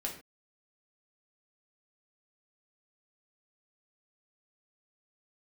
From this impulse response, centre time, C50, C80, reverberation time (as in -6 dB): 21 ms, 7.5 dB, 12.0 dB, no single decay rate